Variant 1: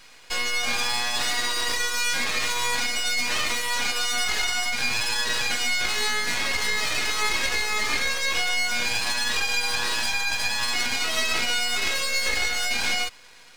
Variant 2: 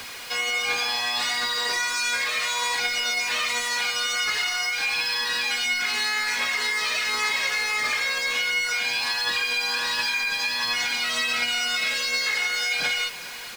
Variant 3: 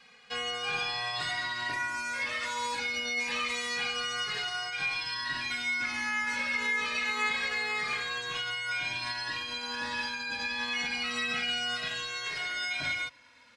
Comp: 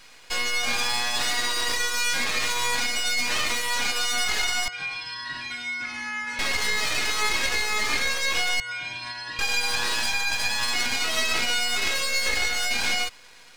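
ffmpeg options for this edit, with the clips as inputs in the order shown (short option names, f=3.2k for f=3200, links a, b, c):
-filter_complex "[2:a]asplit=2[a][b];[0:a]asplit=3[c][d][e];[c]atrim=end=4.682[f];[a]atrim=start=4.678:end=6.392[g];[d]atrim=start=6.388:end=8.602[h];[b]atrim=start=8.598:end=9.392[i];[e]atrim=start=9.388[j];[f][g]acrossfade=d=0.004:c1=hsin:c2=hsin[k];[k][h]acrossfade=d=0.004:c1=hsin:c2=hsin[l];[l][i]acrossfade=d=0.004:c1=hsin:c2=hsin[m];[m][j]acrossfade=d=0.004:c1=hsin:c2=hsin"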